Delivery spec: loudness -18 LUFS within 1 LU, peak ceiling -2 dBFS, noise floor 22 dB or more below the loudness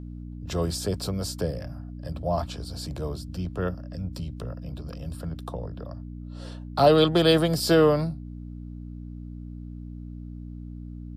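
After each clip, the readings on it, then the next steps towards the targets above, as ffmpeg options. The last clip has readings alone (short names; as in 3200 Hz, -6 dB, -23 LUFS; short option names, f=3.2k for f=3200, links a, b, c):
hum 60 Hz; harmonics up to 300 Hz; hum level -35 dBFS; loudness -26.0 LUFS; peak -6.5 dBFS; loudness target -18.0 LUFS
-> -af "bandreject=f=60:t=h:w=4,bandreject=f=120:t=h:w=4,bandreject=f=180:t=h:w=4,bandreject=f=240:t=h:w=4,bandreject=f=300:t=h:w=4"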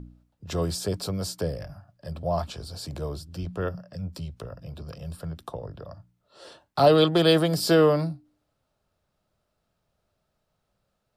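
hum none; loudness -25.0 LUFS; peak -7.0 dBFS; loudness target -18.0 LUFS
-> -af "volume=7dB,alimiter=limit=-2dB:level=0:latency=1"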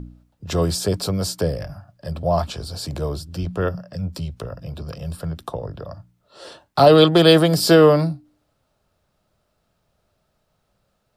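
loudness -18.5 LUFS; peak -2.0 dBFS; noise floor -70 dBFS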